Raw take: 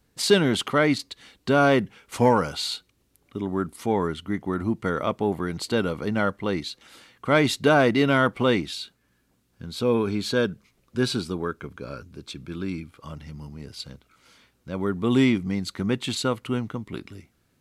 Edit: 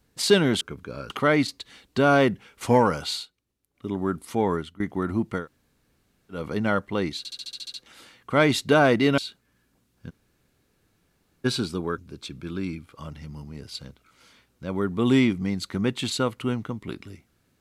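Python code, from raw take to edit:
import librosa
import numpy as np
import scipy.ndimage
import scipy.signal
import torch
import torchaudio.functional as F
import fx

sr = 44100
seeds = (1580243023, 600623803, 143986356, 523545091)

y = fx.edit(x, sr, fx.fade_down_up(start_s=2.63, length_s=0.76, db=-13.0, fade_s=0.14),
    fx.fade_out_to(start_s=4.06, length_s=0.25, floor_db=-19.0),
    fx.room_tone_fill(start_s=4.91, length_s=0.97, crossfade_s=0.16),
    fx.stutter(start_s=6.69, slice_s=0.07, count=9),
    fx.cut(start_s=8.13, length_s=0.61),
    fx.room_tone_fill(start_s=9.66, length_s=1.35, crossfade_s=0.02),
    fx.move(start_s=11.54, length_s=0.49, to_s=0.61), tone=tone)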